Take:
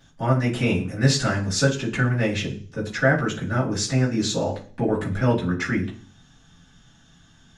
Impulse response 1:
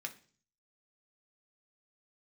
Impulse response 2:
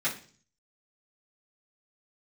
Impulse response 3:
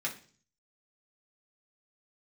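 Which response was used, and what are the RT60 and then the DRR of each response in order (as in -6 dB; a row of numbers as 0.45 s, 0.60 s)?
2; 0.45 s, 0.45 s, 0.45 s; 3.5 dB, -9.5 dB, -3.0 dB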